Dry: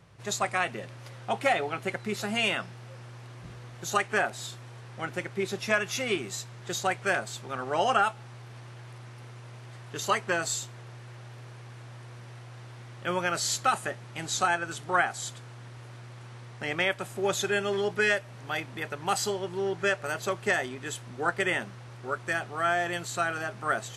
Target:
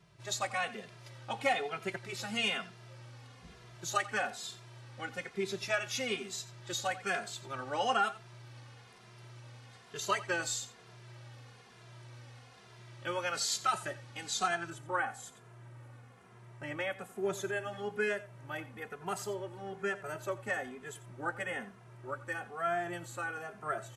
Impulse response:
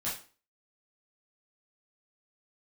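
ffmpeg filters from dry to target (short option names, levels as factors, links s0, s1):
-filter_complex "[0:a]asetnsamples=n=441:p=0,asendcmd='14.7 equalizer g -9.5',equalizer=f=4400:t=o:w=1.5:g=4.5,aecho=1:1:88:0.15,asplit=2[s0][s1];[s1]adelay=2.5,afreqshift=-1.1[s2];[s0][s2]amix=inputs=2:normalize=1,volume=0.631"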